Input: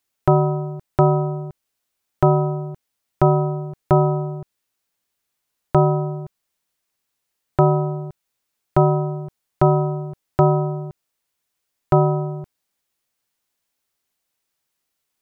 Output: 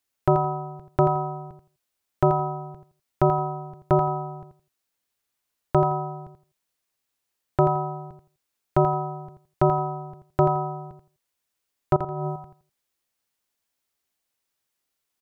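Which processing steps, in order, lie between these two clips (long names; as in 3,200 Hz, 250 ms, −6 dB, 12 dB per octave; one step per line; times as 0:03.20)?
parametric band 160 Hz −4 dB 0.28 octaves
0:11.96–0:12.36: compressor whose output falls as the input rises −27 dBFS, ratio −1
repeating echo 84 ms, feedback 20%, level −9 dB
level −3.5 dB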